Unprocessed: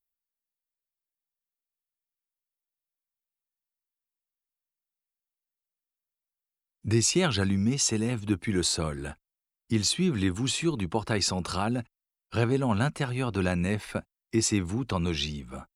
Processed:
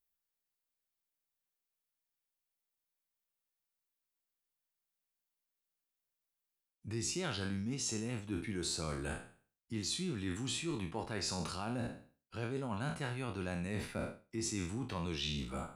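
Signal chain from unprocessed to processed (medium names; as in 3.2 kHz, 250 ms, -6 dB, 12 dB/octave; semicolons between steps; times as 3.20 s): spectral sustain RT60 0.45 s; reverse; compression 6:1, threshold -36 dBFS, peak gain reduction 16.5 dB; reverse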